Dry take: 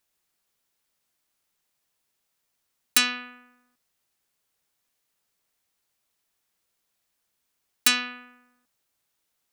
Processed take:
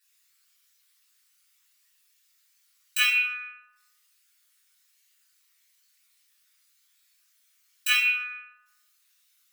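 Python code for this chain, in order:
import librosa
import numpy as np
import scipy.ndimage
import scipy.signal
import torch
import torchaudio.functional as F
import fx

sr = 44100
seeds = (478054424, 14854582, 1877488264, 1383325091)

y = fx.envelope_sharpen(x, sr, power=3.0)
y = scipy.signal.sosfilt(scipy.signal.bessel(8, 2100.0, 'highpass', norm='mag', fs=sr, output='sos'), y)
y = fx.over_compress(y, sr, threshold_db=-23.0, ratio=-0.5)
y = fx.room_shoebox(y, sr, seeds[0], volume_m3=240.0, walls='mixed', distance_m=3.4)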